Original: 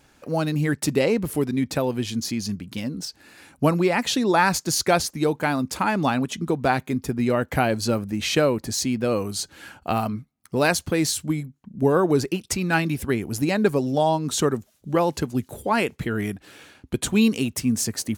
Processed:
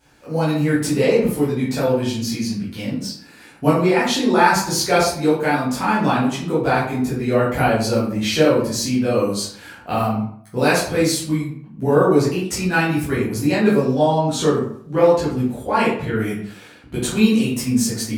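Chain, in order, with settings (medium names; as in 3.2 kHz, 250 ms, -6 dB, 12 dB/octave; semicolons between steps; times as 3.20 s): 13.92–16.16 s: treble shelf 9.7 kHz -8.5 dB; reverberation RT60 0.60 s, pre-delay 9 ms, DRR -10 dB; trim -6.5 dB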